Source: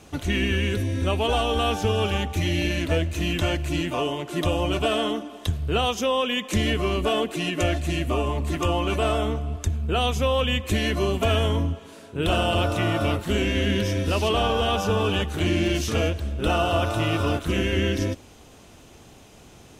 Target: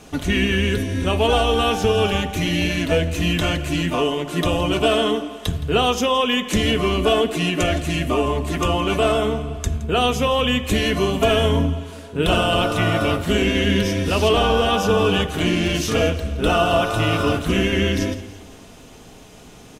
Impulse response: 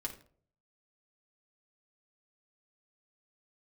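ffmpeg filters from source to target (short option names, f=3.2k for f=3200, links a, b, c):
-filter_complex "[0:a]aecho=1:1:168|336|504|672:0.126|0.0667|0.0354|0.0187,asplit=2[a][b];[1:a]atrim=start_sample=2205[c];[b][c]afir=irnorm=-1:irlink=0,volume=-2dB[d];[a][d]amix=inputs=2:normalize=0,volume=1dB"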